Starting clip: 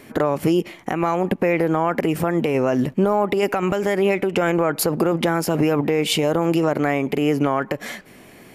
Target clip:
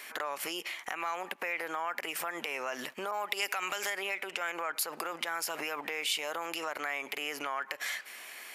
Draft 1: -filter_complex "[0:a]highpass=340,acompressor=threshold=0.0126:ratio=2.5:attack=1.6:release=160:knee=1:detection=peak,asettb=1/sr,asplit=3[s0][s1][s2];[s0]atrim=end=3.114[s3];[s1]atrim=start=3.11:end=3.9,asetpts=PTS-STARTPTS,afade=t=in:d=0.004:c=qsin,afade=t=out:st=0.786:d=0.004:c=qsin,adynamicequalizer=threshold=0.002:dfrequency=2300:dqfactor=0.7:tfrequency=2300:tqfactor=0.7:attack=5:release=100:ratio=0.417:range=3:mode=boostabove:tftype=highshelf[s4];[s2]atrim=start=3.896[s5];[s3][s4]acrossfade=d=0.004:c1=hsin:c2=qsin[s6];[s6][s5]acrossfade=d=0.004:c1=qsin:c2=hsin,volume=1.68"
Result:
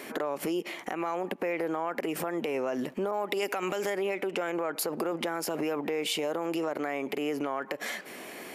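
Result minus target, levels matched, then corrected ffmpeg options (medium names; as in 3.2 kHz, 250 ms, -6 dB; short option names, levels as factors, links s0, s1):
250 Hz band +11.5 dB
-filter_complex "[0:a]highpass=1300,acompressor=threshold=0.0126:ratio=2.5:attack=1.6:release=160:knee=1:detection=peak,asettb=1/sr,asplit=3[s0][s1][s2];[s0]atrim=end=3.114[s3];[s1]atrim=start=3.11:end=3.9,asetpts=PTS-STARTPTS,afade=t=in:d=0.004:c=qsin,afade=t=out:st=0.786:d=0.004:c=qsin,adynamicequalizer=threshold=0.002:dfrequency=2300:dqfactor=0.7:tfrequency=2300:tqfactor=0.7:attack=5:release=100:ratio=0.417:range=3:mode=boostabove:tftype=highshelf[s4];[s2]atrim=start=3.896[s5];[s3][s4]acrossfade=d=0.004:c1=hsin:c2=qsin[s6];[s6][s5]acrossfade=d=0.004:c1=qsin:c2=hsin,volume=1.68"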